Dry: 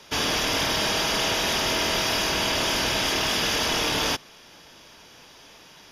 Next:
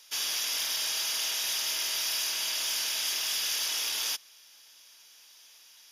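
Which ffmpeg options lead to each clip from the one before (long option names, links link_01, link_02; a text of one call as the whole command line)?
ffmpeg -i in.wav -af "aderivative" out.wav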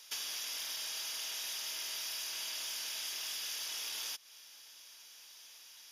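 ffmpeg -i in.wav -af "acompressor=threshold=-38dB:ratio=6" out.wav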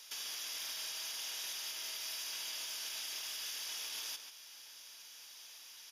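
ffmpeg -i in.wav -filter_complex "[0:a]alimiter=level_in=10dB:limit=-24dB:level=0:latency=1:release=178,volume=-10dB,asplit=2[link_01][link_02];[link_02]adelay=139.9,volume=-7dB,highshelf=frequency=4000:gain=-3.15[link_03];[link_01][link_03]amix=inputs=2:normalize=0,volume=1dB" out.wav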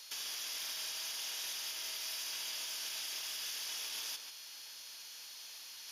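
ffmpeg -i in.wav -af "areverse,acompressor=mode=upward:threshold=-46dB:ratio=2.5,areverse,aeval=exprs='val(0)+0.00141*sin(2*PI*4300*n/s)':channel_layout=same,volume=1dB" out.wav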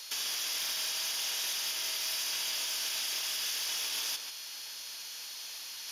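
ffmpeg -i in.wav -af "asoftclip=type=hard:threshold=-34dB,volume=7dB" out.wav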